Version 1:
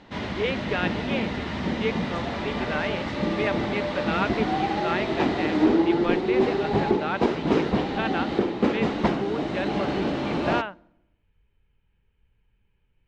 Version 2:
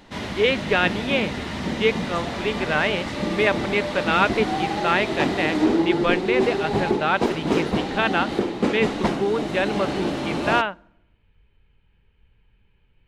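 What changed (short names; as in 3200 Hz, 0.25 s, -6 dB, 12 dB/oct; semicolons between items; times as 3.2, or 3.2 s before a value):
speech +7.0 dB; master: remove air absorption 120 m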